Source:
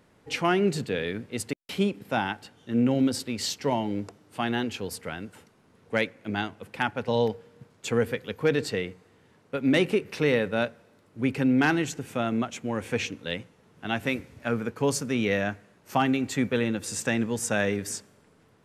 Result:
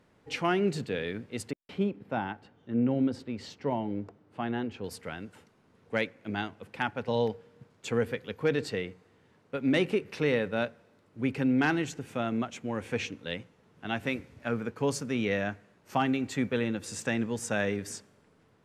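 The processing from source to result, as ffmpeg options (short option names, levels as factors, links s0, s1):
-filter_complex "[0:a]asettb=1/sr,asplit=3[s0][s1][s2];[s0]atrim=end=1.514[s3];[s1]atrim=start=1.51:end=4.84,asetpts=PTS-STARTPTS,afade=t=in:d=0.004:c=qsin,afade=t=out:st=3.326:d=0.004:c=qsin,lowpass=f=1300:p=1[s4];[s2]atrim=start=4.836[s5];[s3][s4]acrossfade=d=0.004:c1=hsin:c2=qsin[s6];[s6][s5]acrossfade=d=0.004:c1=qsin:c2=hsin,highshelf=f=8900:g=-9,volume=0.668"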